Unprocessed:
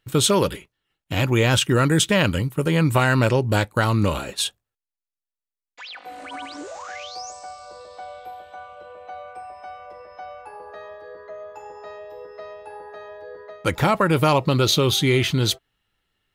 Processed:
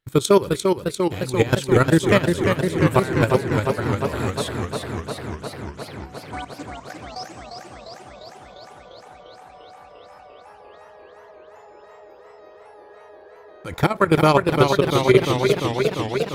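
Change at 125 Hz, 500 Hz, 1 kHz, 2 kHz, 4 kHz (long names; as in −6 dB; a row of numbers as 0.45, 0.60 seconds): −1.0, +4.0, +1.5, −1.0, −6.0 decibels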